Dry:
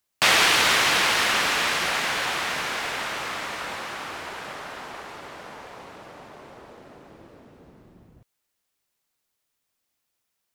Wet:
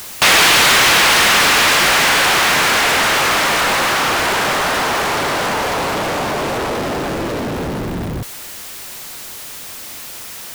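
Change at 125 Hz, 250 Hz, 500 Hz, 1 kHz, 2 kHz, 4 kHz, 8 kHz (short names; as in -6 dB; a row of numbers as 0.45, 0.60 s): +17.5, +16.0, +14.0, +12.5, +11.0, +10.5, +12.5 dB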